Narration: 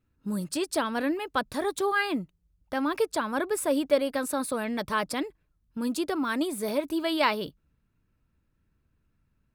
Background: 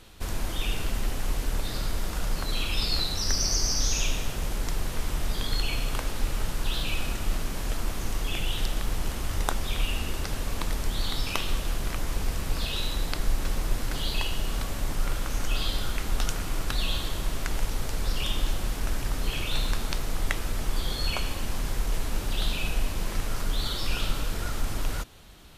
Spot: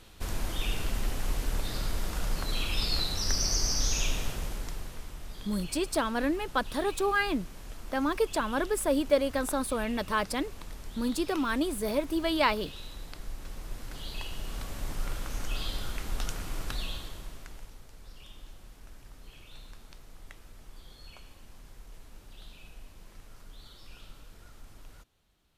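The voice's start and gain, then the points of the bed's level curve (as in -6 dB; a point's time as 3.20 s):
5.20 s, -1.0 dB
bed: 4.27 s -2.5 dB
5.14 s -14 dB
13.40 s -14 dB
14.88 s -6 dB
16.72 s -6 dB
17.85 s -21.5 dB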